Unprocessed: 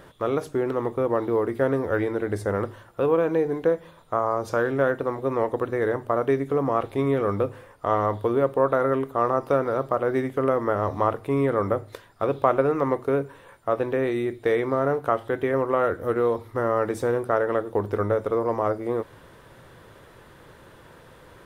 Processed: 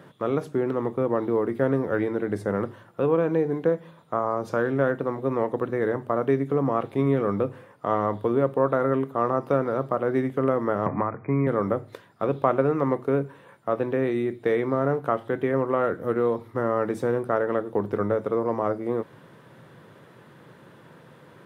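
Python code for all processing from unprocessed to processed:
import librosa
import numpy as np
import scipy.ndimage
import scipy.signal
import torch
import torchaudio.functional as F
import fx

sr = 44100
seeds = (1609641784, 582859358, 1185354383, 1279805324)

y = fx.chain(x, sr, fx.brickwall_lowpass(high_hz=2500.0),
    fx.peak_eq(hz=480.0, db=-6.0, octaves=1.8),
    fx.band_squash(depth_pct=100), at=(10.86, 11.47))
y = scipy.signal.sosfilt(scipy.signal.butter(4, 140.0, 'highpass', fs=sr, output='sos'), y)
y = fx.bass_treble(y, sr, bass_db=9, treble_db=-5)
y = F.gain(torch.from_numpy(y), -2.0).numpy()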